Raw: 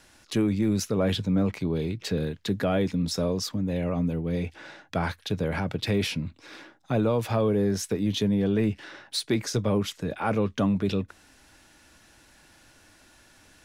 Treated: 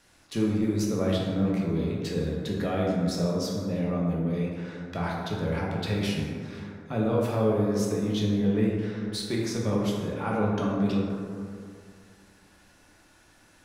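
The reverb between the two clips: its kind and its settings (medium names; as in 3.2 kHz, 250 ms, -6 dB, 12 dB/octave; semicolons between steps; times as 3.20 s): plate-style reverb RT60 2.3 s, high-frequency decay 0.35×, DRR -3.5 dB; trim -6.5 dB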